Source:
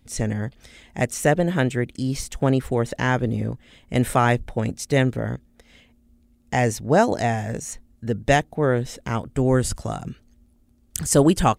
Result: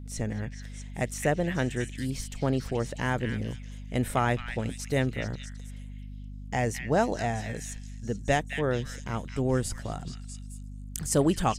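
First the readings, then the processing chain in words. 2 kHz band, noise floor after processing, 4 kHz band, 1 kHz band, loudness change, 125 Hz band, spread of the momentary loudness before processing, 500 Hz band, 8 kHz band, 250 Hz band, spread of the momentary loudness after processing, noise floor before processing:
-6.5 dB, -41 dBFS, -6.0 dB, -7.5 dB, -7.5 dB, -7.0 dB, 12 LU, -7.5 dB, -7.0 dB, -7.5 dB, 16 LU, -59 dBFS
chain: hum 50 Hz, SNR 10 dB; on a send: repeats whose band climbs or falls 215 ms, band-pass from 2.5 kHz, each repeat 0.7 oct, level -2.5 dB; on the sum: trim -7.5 dB

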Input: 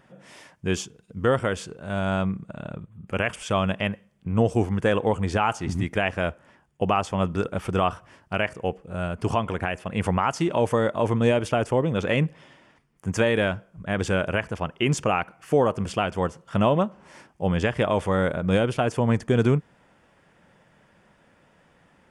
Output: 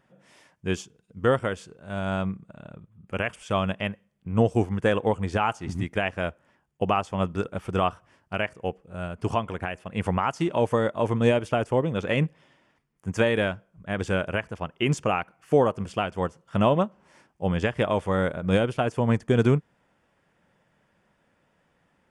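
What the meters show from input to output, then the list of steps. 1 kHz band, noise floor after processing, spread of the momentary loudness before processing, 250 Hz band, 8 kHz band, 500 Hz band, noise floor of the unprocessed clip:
-1.5 dB, -69 dBFS, 9 LU, -1.5 dB, -6.5 dB, -1.0 dB, -60 dBFS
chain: upward expansion 1.5:1, over -35 dBFS; trim +1 dB

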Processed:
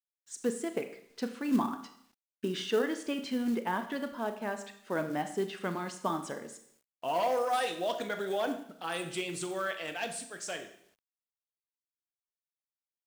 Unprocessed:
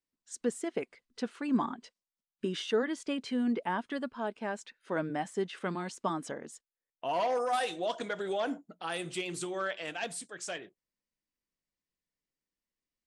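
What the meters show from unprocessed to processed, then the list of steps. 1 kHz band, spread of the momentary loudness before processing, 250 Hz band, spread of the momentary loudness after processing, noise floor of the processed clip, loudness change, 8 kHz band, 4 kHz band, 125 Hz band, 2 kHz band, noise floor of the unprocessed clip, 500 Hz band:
+0.5 dB, 9 LU, +0.5 dB, 11 LU, under -85 dBFS, +0.5 dB, +1.0 dB, +0.5 dB, 0.0 dB, +0.5 dB, under -85 dBFS, +1.0 dB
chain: Schroeder reverb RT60 0.67 s, combs from 27 ms, DRR 8 dB; companded quantiser 6-bit

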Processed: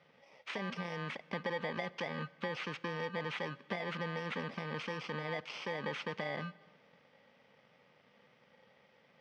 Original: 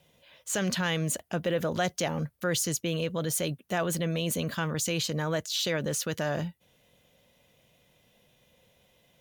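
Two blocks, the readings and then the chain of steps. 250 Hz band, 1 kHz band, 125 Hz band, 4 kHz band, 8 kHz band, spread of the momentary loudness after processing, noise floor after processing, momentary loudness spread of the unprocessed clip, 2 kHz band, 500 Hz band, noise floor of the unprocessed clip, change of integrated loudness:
-11.5 dB, -5.5 dB, -12.5 dB, -12.0 dB, -30.5 dB, 3 LU, -68 dBFS, 3 LU, -5.0 dB, -9.5 dB, -66 dBFS, -10.0 dB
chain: bit-reversed sample order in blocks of 32 samples; compression 10:1, threshold -35 dBFS, peak gain reduction 12 dB; cabinet simulation 250–3400 Hz, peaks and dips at 330 Hz -8 dB, 700 Hz -4 dB, 1.3 kHz +5 dB, 2.1 kHz +3 dB; Schroeder reverb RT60 1.7 s, combs from 30 ms, DRR 19.5 dB; trim +5 dB

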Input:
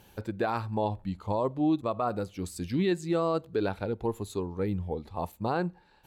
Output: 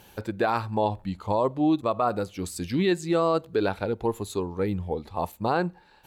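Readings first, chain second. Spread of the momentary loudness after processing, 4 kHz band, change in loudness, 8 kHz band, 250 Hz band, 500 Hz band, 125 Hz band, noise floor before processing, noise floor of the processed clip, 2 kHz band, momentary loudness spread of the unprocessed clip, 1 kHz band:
9 LU, +6.0 dB, +4.0 dB, +6.0 dB, +3.0 dB, +4.5 dB, +1.5 dB, -59 dBFS, -55 dBFS, +6.0 dB, 8 LU, +5.5 dB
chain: bass shelf 330 Hz -5 dB; trim +6 dB

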